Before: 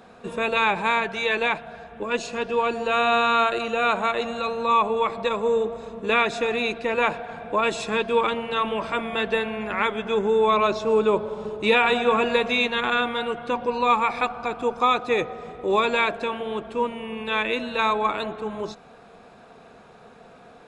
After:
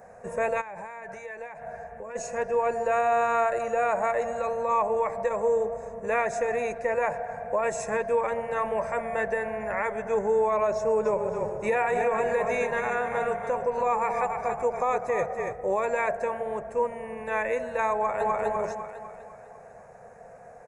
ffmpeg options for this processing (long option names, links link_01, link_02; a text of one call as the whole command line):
ffmpeg -i in.wav -filter_complex "[0:a]asplit=3[link_01][link_02][link_03];[link_01]afade=type=out:start_time=0.6:duration=0.02[link_04];[link_02]acompressor=threshold=-33dB:ratio=10:attack=3.2:release=140:knee=1:detection=peak,afade=type=in:start_time=0.6:duration=0.02,afade=type=out:start_time=2.15:duration=0.02[link_05];[link_03]afade=type=in:start_time=2.15:duration=0.02[link_06];[link_04][link_05][link_06]amix=inputs=3:normalize=0,asplit=3[link_07][link_08][link_09];[link_07]afade=type=out:start_time=11.04:duration=0.02[link_10];[link_08]asplit=5[link_11][link_12][link_13][link_14][link_15];[link_12]adelay=281,afreqshift=-34,volume=-7.5dB[link_16];[link_13]adelay=562,afreqshift=-68,volume=-17.4dB[link_17];[link_14]adelay=843,afreqshift=-102,volume=-27.3dB[link_18];[link_15]adelay=1124,afreqshift=-136,volume=-37.2dB[link_19];[link_11][link_16][link_17][link_18][link_19]amix=inputs=5:normalize=0,afade=type=in:start_time=11.04:duration=0.02,afade=type=out:start_time=15.52:duration=0.02[link_20];[link_09]afade=type=in:start_time=15.52:duration=0.02[link_21];[link_10][link_20][link_21]amix=inputs=3:normalize=0,asplit=2[link_22][link_23];[link_23]afade=type=in:start_time=17.95:duration=0.01,afade=type=out:start_time=18.4:duration=0.01,aecho=0:1:250|500|750|1000|1250|1500|1750:0.944061|0.47203|0.236015|0.118008|0.0590038|0.0295019|0.014751[link_24];[link_22][link_24]amix=inputs=2:normalize=0,firequalizer=gain_entry='entry(130,0);entry(290,-16);entry(540,6);entry(1300,-9);entry(1800,2);entry(3300,-28);entry(6100,1)':delay=0.05:min_phase=1,alimiter=limit=-16.5dB:level=0:latency=1:release=116" out.wav